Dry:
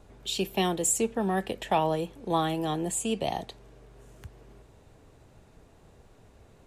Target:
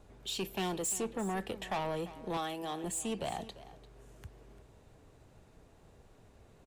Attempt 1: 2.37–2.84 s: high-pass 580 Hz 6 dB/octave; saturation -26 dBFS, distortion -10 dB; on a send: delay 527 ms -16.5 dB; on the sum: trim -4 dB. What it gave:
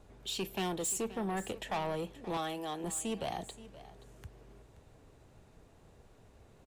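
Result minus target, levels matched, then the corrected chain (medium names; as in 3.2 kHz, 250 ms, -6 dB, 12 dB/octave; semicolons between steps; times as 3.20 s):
echo 182 ms late
2.37–2.84 s: high-pass 580 Hz 6 dB/octave; saturation -26 dBFS, distortion -10 dB; on a send: delay 345 ms -16.5 dB; on the sum: trim -4 dB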